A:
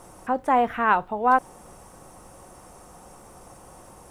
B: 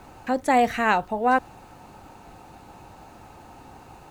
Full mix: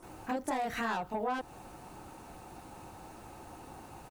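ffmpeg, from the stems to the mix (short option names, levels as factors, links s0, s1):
-filter_complex "[0:a]equalizer=f=320:w=2.7:g=12,volume=0.266[s0];[1:a]asoftclip=type=tanh:threshold=0.106,highshelf=f=10000:g=6.5,adelay=26,volume=0.631[s1];[s0][s1]amix=inputs=2:normalize=0,acompressor=threshold=0.0282:ratio=5"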